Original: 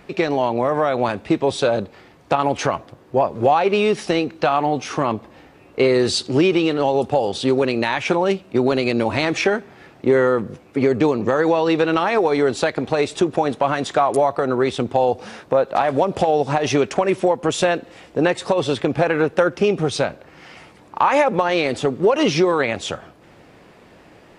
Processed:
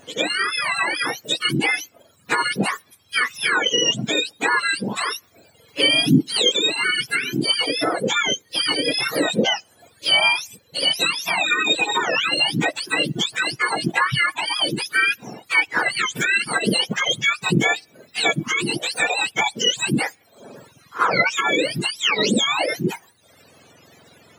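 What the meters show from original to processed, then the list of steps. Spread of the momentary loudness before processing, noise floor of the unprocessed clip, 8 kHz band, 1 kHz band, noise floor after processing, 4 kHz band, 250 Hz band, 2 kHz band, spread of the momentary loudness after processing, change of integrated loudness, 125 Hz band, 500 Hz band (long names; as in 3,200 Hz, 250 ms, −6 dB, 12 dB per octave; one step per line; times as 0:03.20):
6 LU, −48 dBFS, +6.5 dB, −4.5 dB, −57 dBFS, +10.5 dB, −4.5 dB, +7.0 dB, 7 LU, −0.5 dB, −2.5 dB, −10.5 dB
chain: frequency axis turned over on the octave scale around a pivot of 1,100 Hz
reverb reduction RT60 0.86 s
level +2 dB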